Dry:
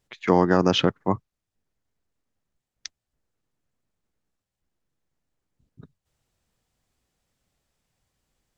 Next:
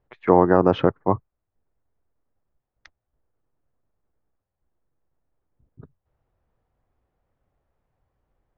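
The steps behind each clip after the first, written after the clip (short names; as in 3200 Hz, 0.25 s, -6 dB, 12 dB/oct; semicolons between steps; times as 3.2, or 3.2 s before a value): LPF 1100 Hz 12 dB/oct; bell 200 Hz -7 dB 1.3 oct; gain +6 dB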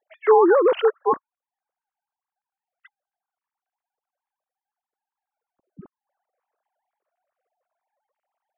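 sine-wave speech; in parallel at -0.5 dB: limiter -15 dBFS, peak gain reduction 9 dB; on the sum: gain -2.5 dB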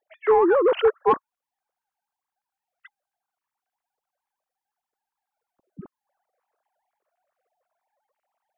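vocal rider 0.5 s; soft clip -8 dBFS, distortion -22 dB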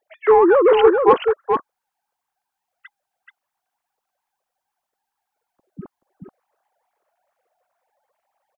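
echo 0.43 s -5 dB; gain +5 dB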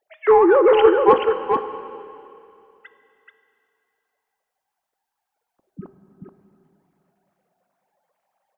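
plate-style reverb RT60 2.7 s, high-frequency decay 0.95×, DRR 9.5 dB; gain -1 dB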